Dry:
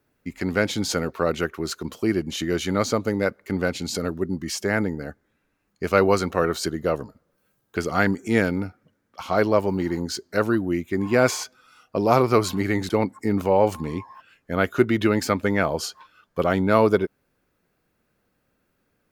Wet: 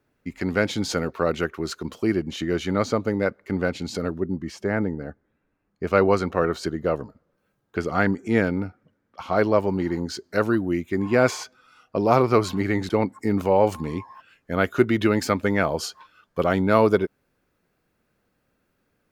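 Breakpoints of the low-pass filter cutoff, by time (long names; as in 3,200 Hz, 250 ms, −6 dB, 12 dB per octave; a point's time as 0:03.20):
low-pass filter 6 dB per octave
5,400 Hz
from 0:02.16 2,900 Hz
from 0:04.20 1,200 Hz
from 0:05.87 2,500 Hz
from 0:09.36 4,100 Hz
from 0:10.24 7,800 Hz
from 0:11.00 4,200 Hz
from 0:13.12 11,000 Hz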